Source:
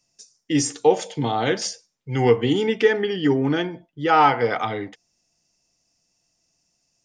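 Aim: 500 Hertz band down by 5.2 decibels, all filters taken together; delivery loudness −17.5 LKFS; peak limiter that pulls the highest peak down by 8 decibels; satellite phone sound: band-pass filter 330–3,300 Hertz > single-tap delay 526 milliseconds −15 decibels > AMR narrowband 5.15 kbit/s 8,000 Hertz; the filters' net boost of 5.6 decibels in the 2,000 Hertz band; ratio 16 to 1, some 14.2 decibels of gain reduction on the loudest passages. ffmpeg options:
ffmpeg -i in.wav -af "equalizer=frequency=500:width_type=o:gain=-5,equalizer=frequency=2000:width_type=o:gain=7.5,acompressor=threshold=-25dB:ratio=16,alimiter=limit=-22dB:level=0:latency=1,highpass=330,lowpass=3300,aecho=1:1:526:0.178,volume=19dB" -ar 8000 -c:a libopencore_amrnb -b:a 5150 out.amr

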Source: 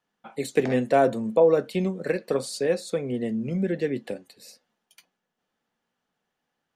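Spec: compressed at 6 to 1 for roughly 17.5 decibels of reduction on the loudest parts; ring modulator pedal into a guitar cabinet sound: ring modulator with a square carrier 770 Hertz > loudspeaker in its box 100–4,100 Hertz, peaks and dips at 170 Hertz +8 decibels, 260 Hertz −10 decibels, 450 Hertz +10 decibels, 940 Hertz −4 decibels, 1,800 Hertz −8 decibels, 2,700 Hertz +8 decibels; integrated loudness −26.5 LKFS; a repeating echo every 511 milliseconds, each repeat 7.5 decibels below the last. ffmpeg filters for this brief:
ffmpeg -i in.wav -af "acompressor=threshold=-34dB:ratio=6,aecho=1:1:511|1022|1533|2044|2555:0.422|0.177|0.0744|0.0312|0.0131,aeval=exprs='val(0)*sgn(sin(2*PI*770*n/s))':channel_layout=same,highpass=100,equalizer=frequency=170:width_type=q:width=4:gain=8,equalizer=frequency=260:width_type=q:width=4:gain=-10,equalizer=frequency=450:width_type=q:width=4:gain=10,equalizer=frequency=940:width_type=q:width=4:gain=-4,equalizer=frequency=1800:width_type=q:width=4:gain=-8,equalizer=frequency=2700:width_type=q:width=4:gain=8,lowpass=frequency=4100:width=0.5412,lowpass=frequency=4100:width=1.3066,volume=9.5dB" out.wav

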